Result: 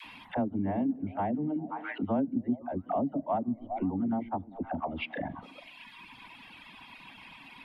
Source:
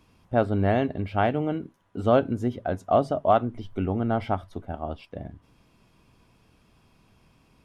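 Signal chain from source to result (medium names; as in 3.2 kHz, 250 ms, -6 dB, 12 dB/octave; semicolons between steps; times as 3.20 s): FFT filter 110 Hz 0 dB, 270 Hz +13 dB, 420 Hz -2 dB, 650 Hz +4 dB, 930 Hz +14 dB, 1.3 kHz +2 dB, 2 kHz +13 dB, 3.7 kHz +8 dB, 5.9 kHz -12 dB, 10 kHz -6 dB; repeats whose band climbs or falls 130 ms, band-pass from 230 Hz, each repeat 0.7 oct, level -8 dB; reverb removal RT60 1.3 s; low-pass that closes with the level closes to 370 Hz, closed at -22.5 dBFS; tilt shelf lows -8.5 dB, about 760 Hz; phase dispersion lows, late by 55 ms, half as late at 550 Hz; compression 2:1, threshold -39 dBFS, peak gain reduction 11 dB; trim +5 dB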